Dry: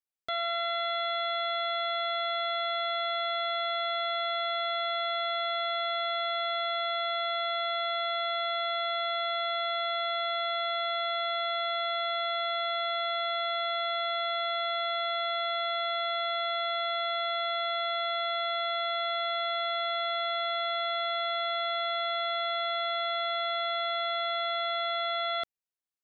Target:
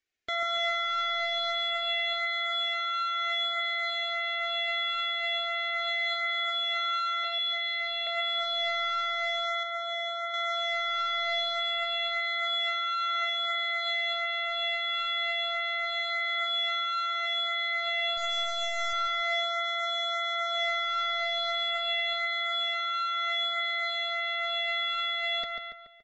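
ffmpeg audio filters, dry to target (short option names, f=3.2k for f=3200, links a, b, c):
-filter_complex "[0:a]aphaser=in_gain=1:out_gain=1:delay=1.1:decay=0.41:speed=0.1:type=sinusoidal,asettb=1/sr,asplit=3[a][b][c];[a]atrim=end=7.244[d];[b]atrim=start=7.24:end=8.07,asetpts=PTS-STARTPTS,afade=t=in:d=0.004:c=qsin,afade=t=out:st=0.826:d=0.004:c=qsin,acrossover=split=440|3000[e][f][g];[f]acompressor=threshold=-39dB:ratio=6[h];[e][h][g]amix=inputs=3:normalize=0[i];[c]atrim=start=8.066[j];[d][i]acrossfade=d=0.004:c1=hsin:c2=qsin[k];[k][j]acrossfade=d=0.004:c1=qsin:c2=hsin,asettb=1/sr,asplit=3[l][m][n];[l]atrim=end=18.174[o];[m]atrim=start=18.17:end=18.93,asetpts=PTS-STARTPTS,afade=t=in:d=0.004:c=qsin,afade=t=out:st=0.756:d=0.004:c=qsin,aeval=exprs='0.0794*(cos(1*acos(clip(val(0)/0.0794,-1,1)))-cos(1*PI/2))+0.02*(cos(2*acos(clip(val(0)/0.0794,-1,1)))-cos(2*PI/2))+0.02*(cos(4*acos(clip(val(0)/0.0794,-1,1)))-cos(4*PI/2))+0.000891*(cos(6*acos(clip(val(0)/0.0794,-1,1)))-cos(6*PI/2))':c=same[p];[n]atrim=start=18.926[q];[o][p]acrossfade=d=0.004:c1=hsin:c2=qsin[r];[r][q]acrossfade=d=0.004:c1=qsin:c2=hsin,asoftclip=type=tanh:threshold=-21.5dB,equalizer=f=500:t=o:w=1:g=3,equalizer=f=1k:t=o:w=1:g=-10,equalizer=f=2k:t=o:w=1:g=9,aresample=16000,aresample=44100,asplit=2[s][t];[t]adelay=142,lowpass=f=3.8k:p=1,volume=-7dB,asplit=2[u][v];[v]adelay=142,lowpass=f=3.8k:p=1,volume=0.53,asplit=2[w][x];[x]adelay=142,lowpass=f=3.8k:p=1,volume=0.53,asplit=2[y][z];[z]adelay=142,lowpass=f=3.8k:p=1,volume=0.53,asplit=2[aa][ab];[ab]adelay=142,lowpass=f=3.8k:p=1,volume=0.53,asplit=2[ac][ad];[ad]adelay=142,lowpass=f=3.8k:p=1,volume=0.53[ae];[s][u][w][y][aa][ac][ae]amix=inputs=7:normalize=0,flanger=delay=2.6:depth=2.2:regen=-25:speed=0.25:shape=triangular,alimiter=level_in=7.5dB:limit=-24dB:level=0:latency=1:release=10,volume=-7.5dB,asettb=1/sr,asplit=3[af][ag][ah];[af]atrim=end=9.634[ai];[ag]atrim=start=9.63:end=10.34,asetpts=PTS-STARTPTS,afade=t=in:d=0.004:c=qsin,afade=t=out:st=0.706:d=0.004:c=qsin,highshelf=f=2.2k:g=-9.5[aj];[ah]atrim=start=10.336[ak];[ai][aj]acrossfade=d=0.004:c1=hsin:c2=qsin[al];[al][ak]acrossfade=d=0.004:c1=qsin:c2=hsin,volume=8.5dB" -ar 44100 -c:a libmp3lame -b:a 48k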